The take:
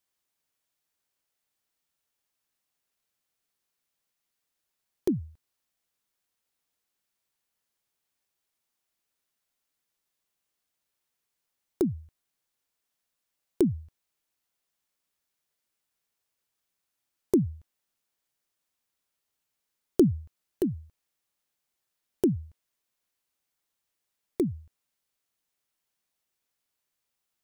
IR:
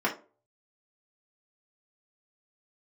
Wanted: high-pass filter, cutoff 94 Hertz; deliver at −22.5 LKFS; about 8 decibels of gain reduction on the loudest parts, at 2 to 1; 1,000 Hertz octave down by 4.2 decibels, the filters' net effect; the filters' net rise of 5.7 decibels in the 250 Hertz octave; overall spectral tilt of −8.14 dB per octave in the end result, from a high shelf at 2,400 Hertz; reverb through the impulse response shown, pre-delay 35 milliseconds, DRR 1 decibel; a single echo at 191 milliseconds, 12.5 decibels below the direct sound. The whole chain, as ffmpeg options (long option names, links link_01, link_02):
-filter_complex "[0:a]highpass=94,equalizer=frequency=250:width_type=o:gain=8,equalizer=frequency=1000:width_type=o:gain=-6,highshelf=frequency=2400:gain=-4,acompressor=threshold=-27dB:ratio=2,aecho=1:1:191:0.237,asplit=2[link_01][link_02];[1:a]atrim=start_sample=2205,adelay=35[link_03];[link_02][link_03]afir=irnorm=-1:irlink=0,volume=-12.5dB[link_04];[link_01][link_04]amix=inputs=2:normalize=0,volume=6dB"